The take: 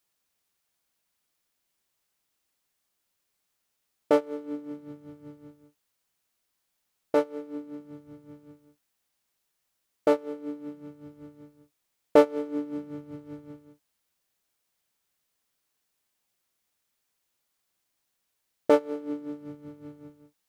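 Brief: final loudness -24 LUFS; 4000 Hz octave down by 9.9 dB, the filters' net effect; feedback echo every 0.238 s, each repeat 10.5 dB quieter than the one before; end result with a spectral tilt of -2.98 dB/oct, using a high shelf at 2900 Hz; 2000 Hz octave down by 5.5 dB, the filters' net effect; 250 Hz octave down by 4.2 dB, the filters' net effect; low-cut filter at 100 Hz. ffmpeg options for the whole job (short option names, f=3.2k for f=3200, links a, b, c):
-af "highpass=100,equalizer=f=250:t=o:g=-5,equalizer=f=2k:t=o:g=-4.5,highshelf=f=2.9k:g=-4,equalizer=f=4k:t=o:g=-8.5,aecho=1:1:238|476|714:0.299|0.0896|0.0269,volume=5.5dB"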